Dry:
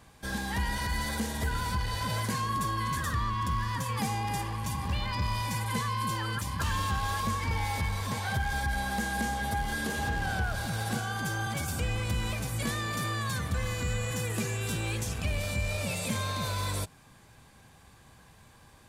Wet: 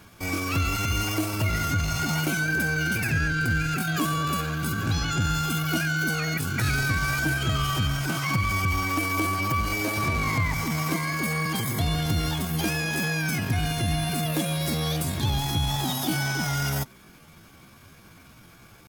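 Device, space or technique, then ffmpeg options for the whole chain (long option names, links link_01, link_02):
chipmunk voice: -af "asetrate=62367,aresample=44100,atempo=0.707107,volume=5.5dB"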